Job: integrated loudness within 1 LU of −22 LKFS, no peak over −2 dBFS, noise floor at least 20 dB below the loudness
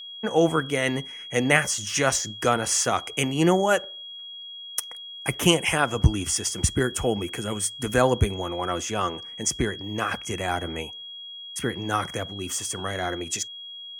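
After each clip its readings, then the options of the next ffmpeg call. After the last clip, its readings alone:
interfering tone 3,300 Hz; level of the tone −37 dBFS; integrated loudness −25.0 LKFS; sample peak −2.0 dBFS; target loudness −22.0 LKFS
→ -af "bandreject=frequency=3300:width=30"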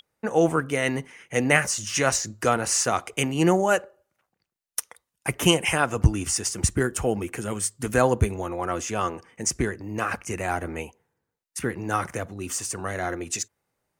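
interfering tone none found; integrated loudness −25.0 LKFS; sample peak −2.0 dBFS; target loudness −22.0 LKFS
→ -af "volume=3dB,alimiter=limit=-2dB:level=0:latency=1"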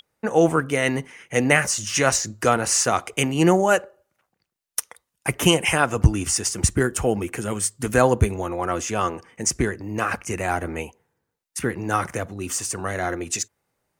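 integrated loudness −22.5 LKFS; sample peak −2.0 dBFS; background noise floor −80 dBFS

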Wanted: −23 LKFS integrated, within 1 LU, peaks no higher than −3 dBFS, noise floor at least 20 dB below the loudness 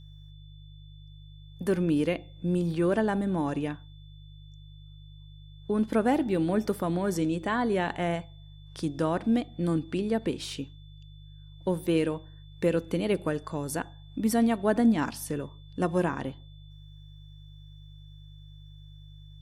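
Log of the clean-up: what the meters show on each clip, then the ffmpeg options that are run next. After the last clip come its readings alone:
mains hum 50 Hz; hum harmonics up to 150 Hz; level of the hum −46 dBFS; interfering tone 3,500 Hz; level of the tone −59 dBFS; integrated loudness −28.5 LKFS; sample peak −12.0 dBFS; target loudness −23.0 LKFS
→ -af "bandreject=frequency=50:width_type=h:width=4,bandreject=frequency=100:width_type=h:width=4,bandreject=frequency=150:width_type=h:width=4"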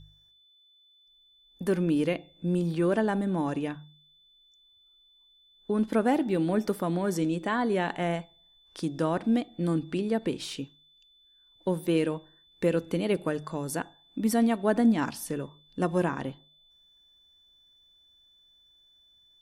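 mains hum none found; interfering tone 3,500 Hz; level of the tone −59 dBFS
→ -af "bandreject=frequency=3500:width=30"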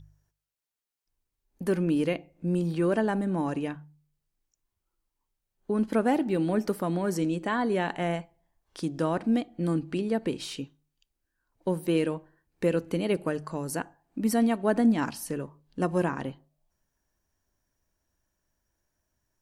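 interfering tone none found; integrated loudness −28.5 LKFS; sample peak −12.0 dBFS; target loudness −23.0 LKFS
→ -af "volume=5.5dB"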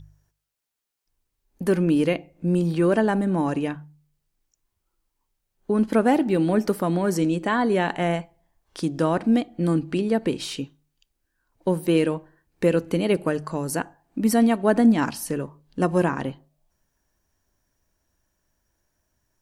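integrated loudness −23.0 LKFS; sample peak −6.5 dBFS; background noise floor −78 dBFS

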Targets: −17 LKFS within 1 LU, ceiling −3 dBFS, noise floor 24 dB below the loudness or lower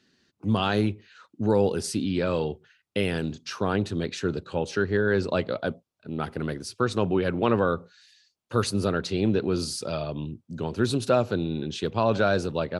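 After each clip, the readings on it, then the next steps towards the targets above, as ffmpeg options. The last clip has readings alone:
integrated loudness −27.0 LKFS; sample peak −8.5 dBFS; target loudness −17.0 LKFS
→ -af "volume=10dB,alimiter=limit=-3dB:level=0:latency=1"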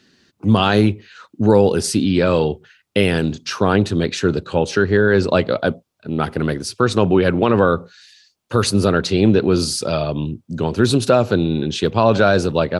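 integrated loudness −17.5 LKFS; sample peak −3.0 dBFS; background noise floor −65 dBFS

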